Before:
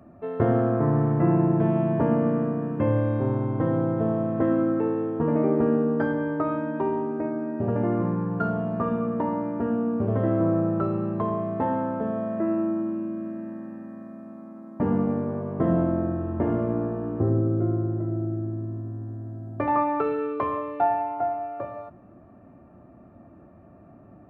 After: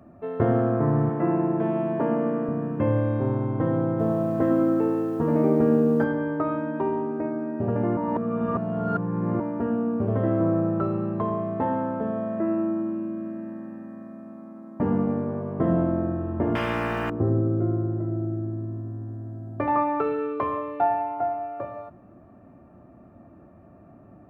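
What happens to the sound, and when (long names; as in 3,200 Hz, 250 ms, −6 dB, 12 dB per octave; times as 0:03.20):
0:01.09–0:02.49: high-pass filter 230 Hz
0:03.89–0:06.04: feedback echo at a low word length 103 ms, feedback 55%, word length 8 bits, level −13 dB
0:07.97–0:09.40: reverse
0:16.55–0:17.10: every bin compressed towards the loudest bin 4 to 1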